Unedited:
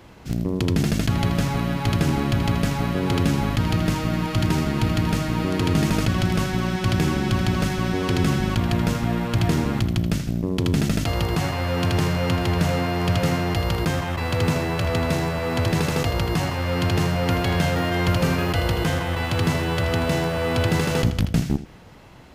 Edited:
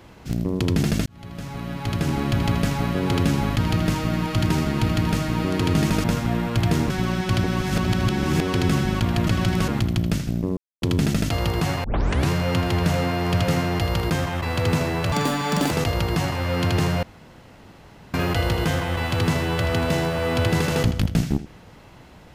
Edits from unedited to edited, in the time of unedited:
0:01.06–0:02.40: fade in
0:06.04–0:06.45: swap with 0:08.82–0:09.68
0:06.99–0:07.96: reverse
0:10.57: splice in silence 0.25 s
0:11.59: tape start 0.46 s
0:14.87–0:15.90: play speed 175%
0:17.22–0:18.33: fill with room tone

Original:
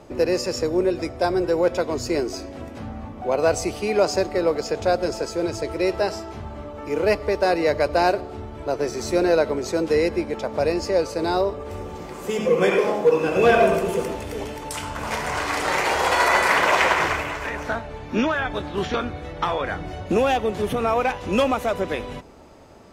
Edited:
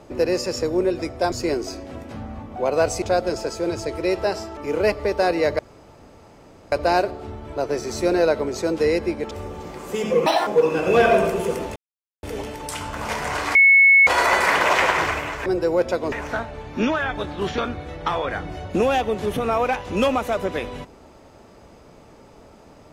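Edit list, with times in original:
0:01.32–0:01.98: move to 0:17.48
0:03.68–0:04.78: remove
0:06.33–0:06.80: remove
0:07.82: splice in room tone 1.13 s
0:10.41–0:11.66: remove
0:12.61–0:12.96: play speed 167%
0:14.25: splice in silence 0.47 s
0:15.57–0:16.09: beep over 2,200 Hz −9 dBFS

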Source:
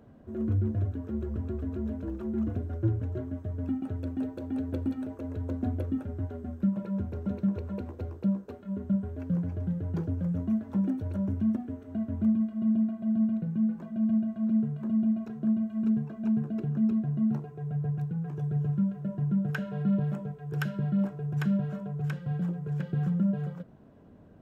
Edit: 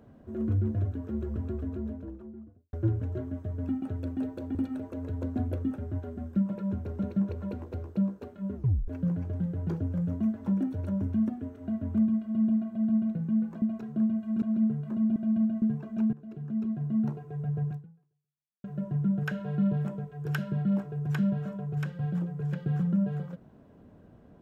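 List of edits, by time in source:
0:01.45–0:02.73: fade out and dull
0:04.55–0:04.82: remove
0:08.82: tape stop 0.33 s
0:13.89–0:14.35: swap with 0:15.09–0:15.89
0:16.40–0:17.35: fade in, from −16.5 dB
0:17.97–0:18.91: fade out exponential

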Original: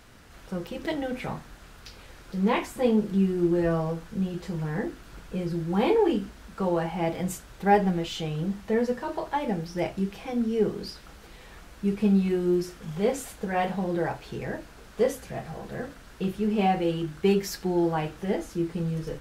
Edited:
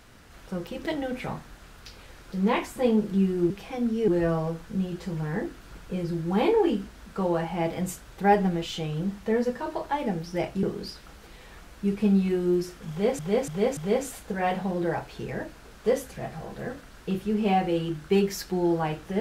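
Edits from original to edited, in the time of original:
0:10.05–0:10.63: move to 0:03.50
0:12.90–0:13.19: repeat, 4 plays

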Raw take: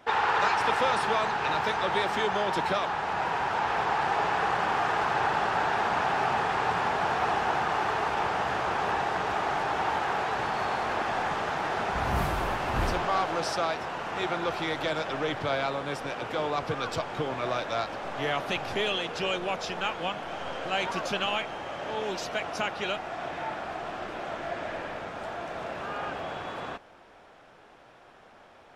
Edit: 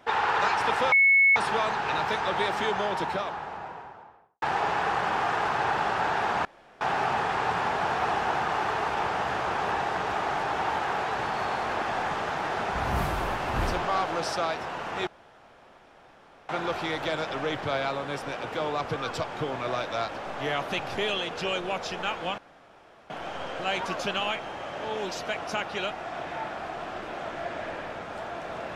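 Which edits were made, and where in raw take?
0:00.92: insert tone 2,200 Hz −15.5 dBFS 0.44 s
0:02.21–0:03.98: fade out and dull
0:06.01: splice in room tone 0.36 s
0:14.27: splice in room tone 1.42 s
0:20.16: splice in room tone 0.72 s

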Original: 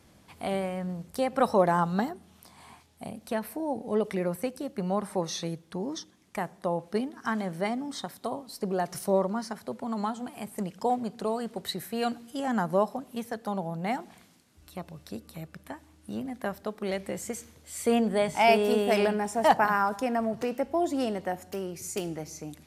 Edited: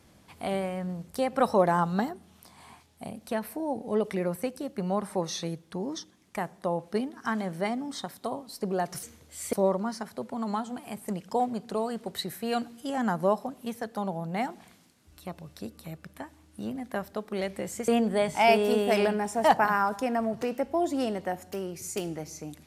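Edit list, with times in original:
0:17.38–0:17.88: move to 0:09.03

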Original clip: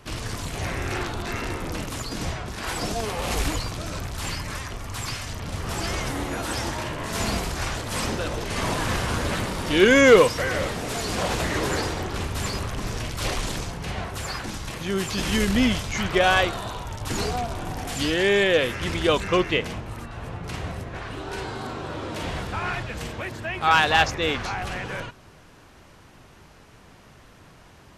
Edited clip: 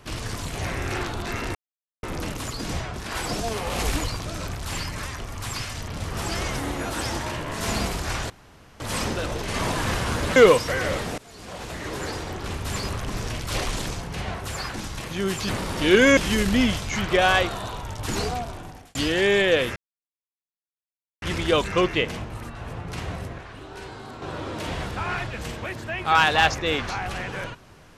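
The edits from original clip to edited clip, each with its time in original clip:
0:01.55: splice in silence 0.48 s
0:07.82: splice in room tone 0.50 s
0:09.38–0:10.06: move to 0:15.19
0:10.88–0:12.62: fade in, from −23 dB
0:17.27–0:17.97: fade out
0:18.78: splice in silence 1.46 s
0:20.94–0:21.78: clip gain −6.5 dB

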